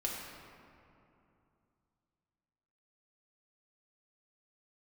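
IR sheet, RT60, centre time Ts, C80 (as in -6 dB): 2.7 s, 104 ms, 2.0 dB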